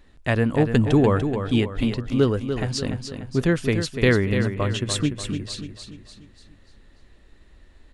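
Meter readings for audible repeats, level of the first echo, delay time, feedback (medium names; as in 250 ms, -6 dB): 5, -8.0 dB, 293 ms, 46%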